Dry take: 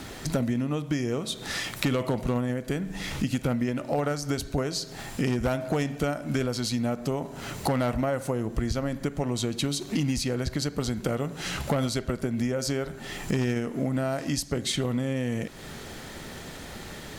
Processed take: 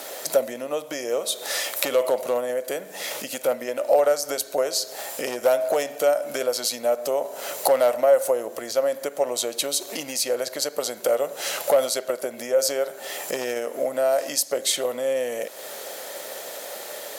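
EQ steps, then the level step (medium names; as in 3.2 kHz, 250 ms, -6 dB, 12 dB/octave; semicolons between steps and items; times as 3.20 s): resonant high-pass 560 Hz, resonance Q 4.9; treble shelf 4.3 kHz +8.5 dB; peaking EQ 14 kHz +9.5 dB 0.75 oct; 0.0 dB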